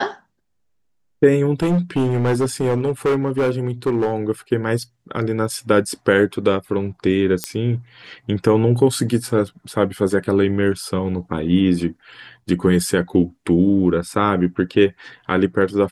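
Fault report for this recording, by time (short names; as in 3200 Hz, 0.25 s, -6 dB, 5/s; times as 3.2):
1.53–4.14 clipped -14 dBFS
7.44 pop -4 dBFS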